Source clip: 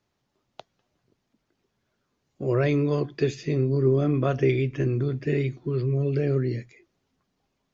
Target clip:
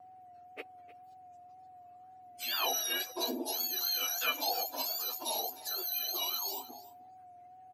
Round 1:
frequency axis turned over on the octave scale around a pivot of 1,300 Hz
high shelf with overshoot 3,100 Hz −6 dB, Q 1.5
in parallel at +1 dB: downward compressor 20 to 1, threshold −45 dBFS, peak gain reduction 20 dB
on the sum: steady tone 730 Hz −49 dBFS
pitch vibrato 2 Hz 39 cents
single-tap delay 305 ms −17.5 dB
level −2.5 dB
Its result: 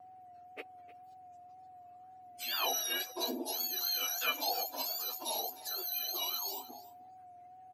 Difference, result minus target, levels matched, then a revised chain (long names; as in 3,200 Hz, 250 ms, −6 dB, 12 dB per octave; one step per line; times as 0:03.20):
downward compressor: peak gain reduction +5.5 dB
frequency axis turned over on the octave scale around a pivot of 1,300 Hz
high shelf with overshoot 3,100 Hz −6 dB, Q 1.5
in parallel at +1 dB: downward compressor 20 to 1, threshold −39 dBFS, peak gain reduction 14 dB
on the sum: steady tone 730 Hz −49 dBFS
pitch vibrato 2 Hz 39 cents
single-tap delay 305 ms −17.5 dB
level −2.5 dB